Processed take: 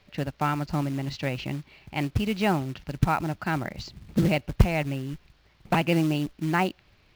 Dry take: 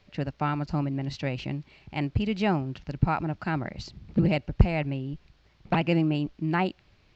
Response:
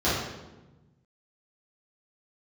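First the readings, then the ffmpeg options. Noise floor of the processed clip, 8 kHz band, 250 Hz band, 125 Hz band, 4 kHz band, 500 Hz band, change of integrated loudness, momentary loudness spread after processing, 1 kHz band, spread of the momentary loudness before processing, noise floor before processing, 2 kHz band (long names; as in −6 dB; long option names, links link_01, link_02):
−61 dBFS, can't be measured, +0.5 dB, 0.0 dB, +3.0 dB, +1.5 dB, +1.0 dB, 11 LU, +2.5 dB, 11 LU, −62 dBFS, +3.0 dB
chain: -af "acrusher=bits=5:mode=log:mix=0:aa=0.000001,equalizer=frequency=1800:width=0.36:gain=3"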